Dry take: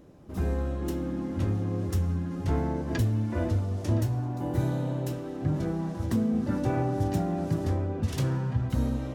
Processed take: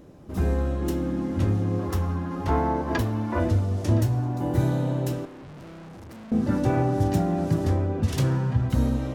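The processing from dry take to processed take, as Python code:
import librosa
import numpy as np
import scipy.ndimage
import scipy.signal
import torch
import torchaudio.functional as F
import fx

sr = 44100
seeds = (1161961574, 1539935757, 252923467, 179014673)

y = fx.graphic_eq(x, sr, hz=(125, 1000, 8000), db=(-8, 9, -5), at=(1.79, 3.4))
y = fx.tube_stage(y, sr, drive_db=46.0, bias=0.6, at=(5.25, 6.32))
y = y * librosa.db_to_amplitude(4.5)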